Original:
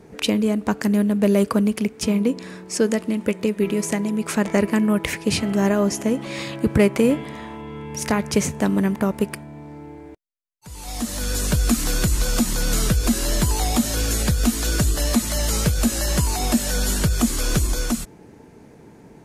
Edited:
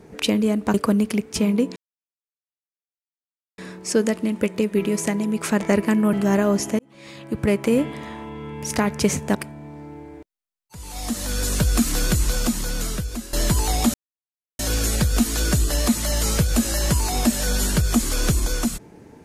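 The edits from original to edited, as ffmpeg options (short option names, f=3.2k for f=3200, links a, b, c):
-filter_complex "[0:a]asplit=8[a][b][c][d][e][f][g][h];[a]atrim=end=0.742[i];[b]atrim=start=1.408:end=2.43,asetpts=PTS-STARTPTS,afade=t=out:st=1.018:d=0.004:c=hsin,apad=pad_dur=1.82[j];[c]atrim=start=2.43:end=4.982,asetpts=PTS-STARTPTS,afade=t=in:d=0.004:c=hsin[k];[d]atrim=start=5.448:end=6.11,asetpts=PTS-STARTPTS,afade=t=out:st=0.658:d=0.004:c=hsin[l];[e]atrim=start=6.11:end=8.672,asetpts=PTS-STARTPTS,afade=t=in:d=1.12[m];[f]atrim=start=9.268:end=13.25,asetpts=PTS-STARTPTS,afade=t=out:st=2.842:d=1.14:silence=0.16788[n];[g]atrim=start=13.25:end=13.86,asetpts=PTS-STARTPTS,afade=t=in:d=0.004:c=hsin:silence=0.16788,afade=t=out:st=0.606:d=0.004:c=hsin,apad=pad_dur=0.65[o];[h]atrim=start=13.86,asetpts=PTS-STARTPTS,afade=t=in:d=0.004:c=hsin[p];[j][k]concat=n=2:v=0:a=1[q];[i][q]acrossfade=d=0.004:c1=hsin:c2=hsin[r];[l][m]concat=n=2:v=0:a=1[s];[r][s]acrossfade=d=0.004:c1=hsin:c2=hsin[t];[n][o][p]concat=n=3:v=0:a=1[u];[t][u]acrossfade=d=0.004:c1=hsin:c2=hsin"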